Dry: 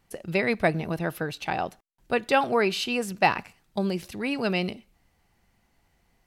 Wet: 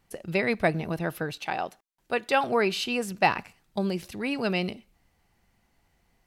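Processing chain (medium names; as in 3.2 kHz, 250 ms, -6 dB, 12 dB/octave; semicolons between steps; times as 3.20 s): 1.38–2.44 s: bass shelf 190 Hz -12 dB; trim -1 dB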